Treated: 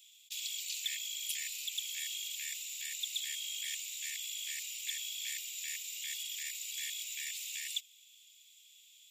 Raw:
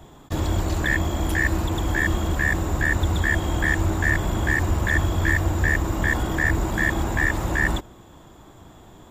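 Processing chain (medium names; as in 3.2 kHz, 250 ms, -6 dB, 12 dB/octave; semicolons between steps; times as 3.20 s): steep high-pass 2.4 kHz 72 dB/octave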